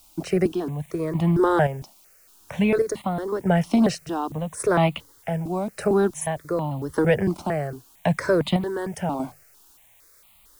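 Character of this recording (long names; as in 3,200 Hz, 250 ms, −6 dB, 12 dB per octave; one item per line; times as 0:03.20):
chopped level 0.87 Hz, depth 60%, duty 45%
a quantiser's noise floor 10 bits, dither triangular
notches that jump at a steady rate 4.4 Hz 470–1,600 Hz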